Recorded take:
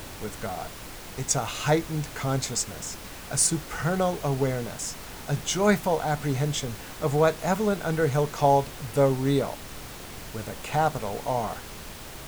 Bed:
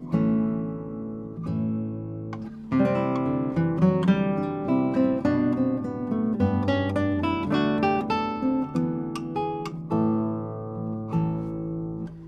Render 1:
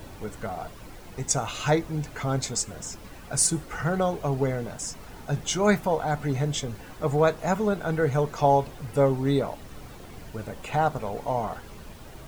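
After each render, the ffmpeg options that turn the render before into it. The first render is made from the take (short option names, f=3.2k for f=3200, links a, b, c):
-af "afftdn=nr=10:nf=-41"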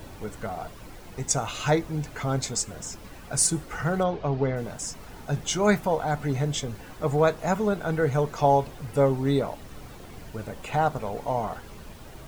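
-filter_complex "[0:a]asplit=3[a][b][c];[a]afade=t=out:st=4.03:d=0.02[d];[b]lowpass=f=4.8k:w=0.5412,lowpass=f=4.8k:w=1.3066,afade=t=in:st=4.03:d=0.02,afade=t=out:st=4.55:d=0.02[e];[c]afade=t=in:st=4.55:d=0.02[f];[d][e][f]amix=inputs=3:normalize=0"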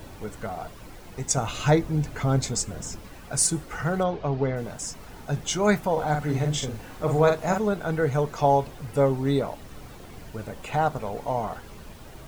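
-filter_complex "[0:a]asettb=1/sr,asplit=3[a][b][c];[a]atrim=end=1.374[d];[b]atrim=start=1.37:end=3.01,asetpts=PTS-STARTPTS,afade=t=in:d=0.004:c=qsin,afade=t=out:st=1.636:d=0.004:c=qsin,lowshelf=f=360:g=6[e];[c]atrim=start=3.006[f];[d][e]acrossfade=d=0.004:c1=hsin:c2=qsin[g];[g][f]acrossfade=d=0.004:c1=qsin:c2=hsin,asettb=1/sr,asplit=3[h][i][j];[h]atrim=end=5.924[k];[i]atrim=start=5.92:end=7.58,asetpts=PTS-STARTPTS,afade=t=in:d=0.004:c=qsin,afade=t=out:st=1.656:d=0.004:c=qsin,asplit=2[l][m];[m]adelay=46,volume=-4.5dB[n];[l][n]amix=inputs=2:normalize=0,atrim=end_sample=73206[o];[j]atrim=start=7.576[p];[k][o]acrossfade=d=0.004:c1=hsin:c2=qsin[q];[q][p]acrossfade=d=0.004:c1=qsin:c2=hsin"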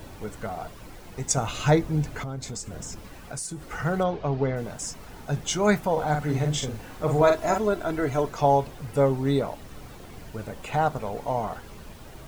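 -filter_complex "[0:a]asettb=1/sr,asplit=3[a][b][c];[a]atrim=end=2.234[d];[b]atrim=start=2.23:end=3.67,asetpts=PTS-STARTPTS,afade=t=in:d=0.004:c=qsin,afade=t=out:st=1.436:d=0.004:c=qsin,acompressor=threshold=-32dB:ratio=4:attack=3.2:release=140:knee=1:detection=peak[e];[c]atrim=start=3.666[f];[d][e]acrossfade=d=0.004:c1=hsin:c2=qsin[g];[g][f]acrossfade=d=0.004:c1=qsin:c2=hsin,asettb=1/sr,asplit=3[h][i][j];[h]atrim=end=7.214[k];[i]atrim=start=7.21:end=8.29,asetpts=PTS-STARTPTS,afade=t=in:d=0.004:c=qsin,afade=t=out:st=1.076:d=0.004:c=qsin,aecho=1:1:3:0.65,atrim=end_sample=47628[l];[j]atrim=start=8.286[m];[k][l]acrossfade=d=0.004:c1=hsin:c2=qsin[n];[n][m]acrossfade=d=0.004:c1=qsin:c2=hsin"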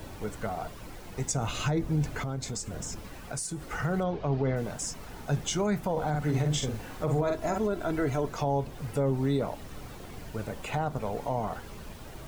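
-filter_complex "[0:a]acrossover=split=380[a][b];[b]acompressor=threshold=-31dB:ratio=2[c];[a][c]amix=inputs=2:normalize=0,alimiter=limit=-19dB:level=0:latency=1:release=44"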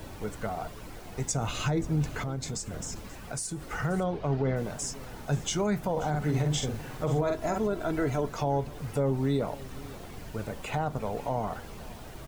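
-af "aecho=1:1:533:0.106"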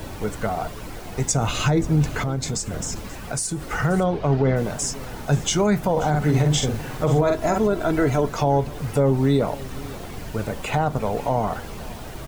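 -af "volume=8.5dB"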